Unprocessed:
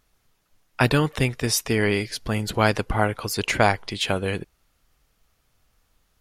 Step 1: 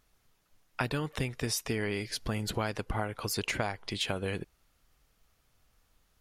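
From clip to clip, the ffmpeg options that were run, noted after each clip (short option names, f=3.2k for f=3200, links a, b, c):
-af "acompressor=threshold=-26dB:ratio=6,volume=-3dB"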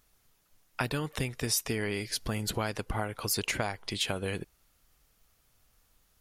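-af "highshelf=f=6.7k:g=8"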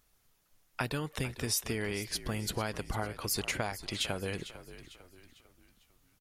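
-filter_complex "[0:a]asplit=5[a][b][c][d][e];[b]adelay=450,afreqshift=-53,volume=-14dB[f];[c]adelay=900,afreqshift=-106,volume=-21.3dB[g];[d]adelay=1350,afreqshift=-159,volume=-28.7dB[h];[e]adelay=1800,afreqshift=-212,volume=-36dB[i];[a][f][g][h][i]amix=inputs=5:normalize=0,volume=-2.5dB"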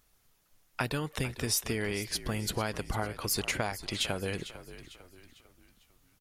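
-af "aeval=exprs='0.15*(cos(1*acos(clip(val(0)/0.15,-1,1)))-cos(1*PI/2))+0.00422*(cos(4*acos(clip(val(0)/0.15,-1,1)))-cos(4*PI/2))':c=same,volume=2dB"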